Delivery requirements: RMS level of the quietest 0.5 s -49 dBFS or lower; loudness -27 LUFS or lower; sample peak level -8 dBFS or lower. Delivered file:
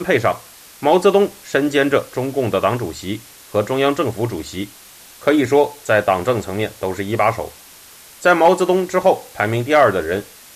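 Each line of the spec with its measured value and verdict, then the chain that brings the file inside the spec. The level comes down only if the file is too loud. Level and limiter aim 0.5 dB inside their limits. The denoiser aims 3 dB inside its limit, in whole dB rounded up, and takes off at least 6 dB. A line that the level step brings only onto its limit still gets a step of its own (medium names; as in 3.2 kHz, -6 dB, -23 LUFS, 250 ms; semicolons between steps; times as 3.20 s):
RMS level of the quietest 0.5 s -43 dBFS: fail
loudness -17.5 LUFS: fail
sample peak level -3.0 dBFS: fail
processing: trim -10 dB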